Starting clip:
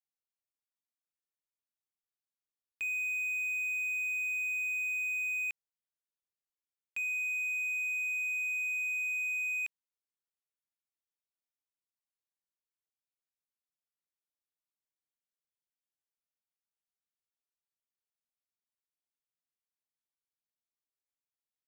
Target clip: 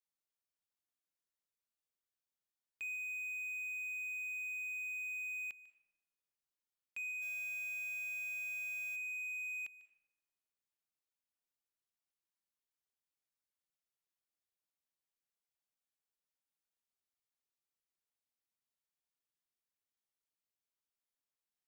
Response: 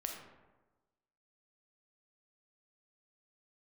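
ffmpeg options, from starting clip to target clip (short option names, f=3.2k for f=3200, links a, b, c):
-filter_complex "[0:a]alimiter=level_in=10.5dB:limit=-24dB:level=0:latency=1,volume=-10.5dB,asplit=3[a][b][c];[a]afade=t=out:st=7.21:d=0.02[d];[b]acrusher=bits=5:mode=log:mix=0:aa=0.000001,afade=t=in:st=7.21:d=0.02,afade=t=out:st=8.95:d=0.02[e];[c]afade=t=in:st=8.95:d=0.02[f];[d][e][f]amix=inputs=3:normalize=0,asplit=2[g][h];[1:a]atrim=start_sample=2205,adelay=147[i];[h][i]afir=irnorm=-1:irlink=0,volume=-16dB[j];[g][j]amix=inputs=2:normalize=0,volume=-2dB"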